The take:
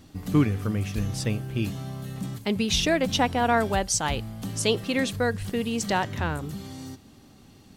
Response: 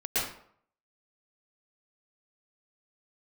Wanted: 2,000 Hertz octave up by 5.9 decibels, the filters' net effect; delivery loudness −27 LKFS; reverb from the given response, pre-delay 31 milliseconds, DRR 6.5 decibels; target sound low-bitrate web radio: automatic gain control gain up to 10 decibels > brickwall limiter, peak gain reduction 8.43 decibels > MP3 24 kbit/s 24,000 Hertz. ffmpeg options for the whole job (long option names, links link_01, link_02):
-filter_complex "[0:a]equalizer=frequency=2000:width_type=o:gain=7.5,asplit=2[link_01][link_02];[1:a]atrim=start_sample=2205,adelay=31[link_03];[link_02][link_03]afir=irnorm=-1:irlink=0,volume=-16dB[link_04];[link_01][link_04]amix=inputs=2:normalize=0,dynaudnorm=maxgain=10dB,alimiter=limit=-15.5dB:level=0:latency=1" -ar 24000 -c:a libmp3lame -b:a 24k